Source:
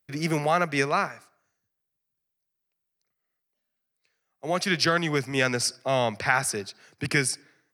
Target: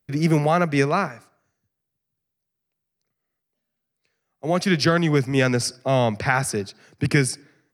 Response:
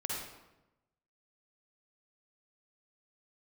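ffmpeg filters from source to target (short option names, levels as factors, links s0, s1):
-af "lowshelf=f=480:g=10.5"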